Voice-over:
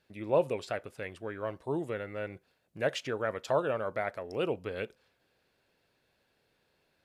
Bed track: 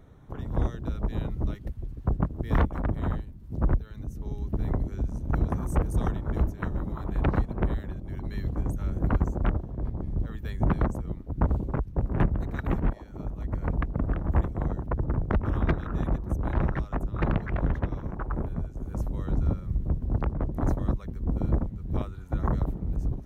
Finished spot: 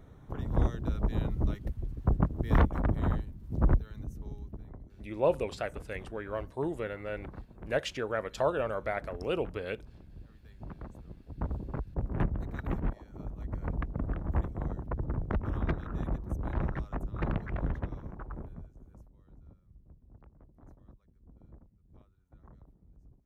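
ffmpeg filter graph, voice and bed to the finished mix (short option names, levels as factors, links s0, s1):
-filter_complex "[0:a]adelay=4900,volume=1[s0];[1:a]volume=4.73,afade=t=out:st=3.72:d=0.93:silence=0.105925,afade=t=in:st=10.8:d=1.23:silence=0.199526,afade=t=out:st=17.66:d=1.44:silence=0.0707946[s1];[s0][s1]amix=inputs=2:normalize=0"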